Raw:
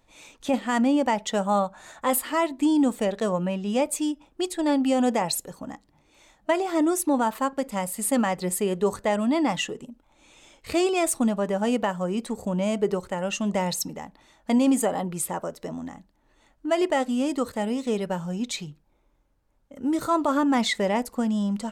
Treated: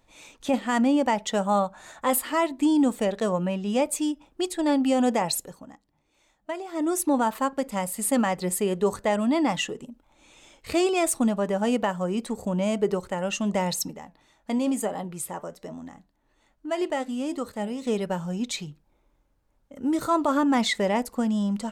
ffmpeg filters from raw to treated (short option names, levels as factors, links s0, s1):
-filter_complex "[0:a]asettb=1/sr,asplit=3[s0][s1][s2];[s0]atrim=end=13.914[s3];[s1]atrim=start=13.91:end=17.82,asetpts=PTS-STARTPTS,afade=t=in:d=0.004:c=qsin,afade=t=out:st=3.906:d=0.004:c=qsin,flanger=delay=4.7:depth=2.7:regen=86:speed=1.1:shape=sinusoidal[s4];[s2]atrim=start=17.816[s5];[s3][s4]acrossfade=d=0.004:c1=hsin:c2=qsin[s6];[s6][s5]acrossfade=d=0.004:c1=qsin:c2=hsin,asplit=3[s7][s8][s9];[s7]atrim=end=5.67,asetpts=PTS-STARTPTS,afade=t=out:st=5.4:d=0.27:silence=0.334965[s10];[s8]atrim=start=5.67:end=6.72,asetpts=PTS-STARTPTS,volume=0.335[s11];[s9]atrim=start=6.72,asetpts=PTS-STARTPTS,afade=t=in:d=0.27:silence=0.334965[s12];[s10][s11][s12]concat=n=3:v=0:a=1"